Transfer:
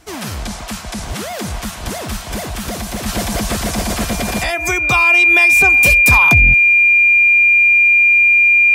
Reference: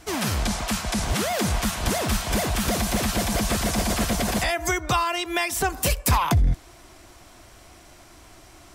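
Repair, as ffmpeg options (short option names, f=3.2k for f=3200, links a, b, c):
-af "bandreject=f=2.4k:w=30,asetnsamples=n=441:p=0,asendcmd='3.06 volume volume -4.5dB',volume=0dB"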